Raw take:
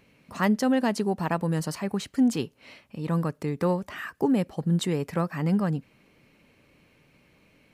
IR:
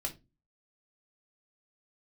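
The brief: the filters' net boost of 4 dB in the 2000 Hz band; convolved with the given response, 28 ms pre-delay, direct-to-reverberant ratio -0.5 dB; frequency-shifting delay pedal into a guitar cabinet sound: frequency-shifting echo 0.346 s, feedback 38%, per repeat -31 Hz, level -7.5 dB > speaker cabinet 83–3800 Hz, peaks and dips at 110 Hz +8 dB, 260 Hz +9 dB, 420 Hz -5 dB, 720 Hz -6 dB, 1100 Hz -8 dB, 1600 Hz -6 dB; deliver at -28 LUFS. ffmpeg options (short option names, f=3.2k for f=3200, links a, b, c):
-filter_complex "[0:a]equalizer=f=2k:t=o:g=8.5,asplit=2[a][b];[1:a]atrim=start_sample=2205,adelay=28[c];[b][c]afir=irnorm=-1:irlink=0,volume=-1dB[d];[a][d]amix=inputs=2:normalize=0,asplit=5[e][f][g][h][i];[f]adelay=346,afreqshift=-31,volume=-7.5dB[j];[g]adelay=692,afreqshift=-62,volume=-15.9dB[k];[h]adelay=1038,afreqshift=-93,volume=-24.3dB[l];[i]adelay=1384,afreqshift=-124,volume=-32.7dB[m];[e][j][k][l][m]amix=inputs=5:normalize=0,highpass=83,equalizer=f=110:t=q:w=4:g=8,equalizer=f=260:t=q:w=4:g=9,equalizer=f=420:t=q:w=4:g=-5,equalizer=f=720:t=q:w=4:g=-6,equalizer=f=1.1k:t=q:w=4:g=-8,equalizer=f=1.6k:t=q:w=4:g=-6,lowpass=f=3.8k:w=0.5412,lowpass=f=3.8k:w=1.3066,volume=-8.5dB"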